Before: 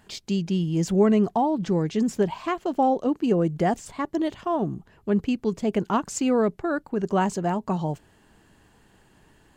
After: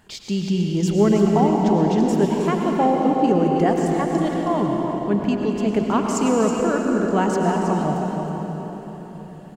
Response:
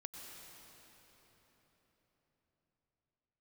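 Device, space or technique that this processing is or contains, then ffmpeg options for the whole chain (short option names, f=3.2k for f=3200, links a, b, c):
cave: -filter_complex "[0:a]aecho=1:1:320:0.355[a];[1:a]atrim=start_sample=2205[b];[a][b]afir=irnorm=-1:irlink=0,volume=7.5dB"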